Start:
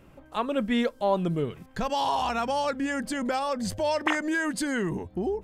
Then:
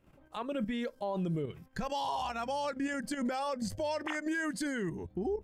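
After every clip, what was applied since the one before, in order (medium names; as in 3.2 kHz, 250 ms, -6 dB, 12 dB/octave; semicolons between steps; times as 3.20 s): spectral noise reduction 6 dB; level held to a coarse grid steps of 10 dB; peak limiter -26.5 dBFS, peak gain reduction 7.5 dB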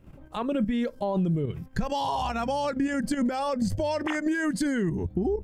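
bass shelf 300 Hz +11 dB; compression, threshold -28 dBFS, peak gain reduction 6.5 dB; trim +5.5 dB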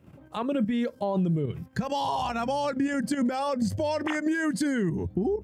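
high-pass 81 Hz 24 dB/octave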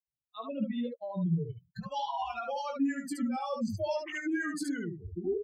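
expander on every frequency bin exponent 3; on a send: early reflections 18 ms -6 dB, 72 ms -4 dB; on the sum: trim -3 dB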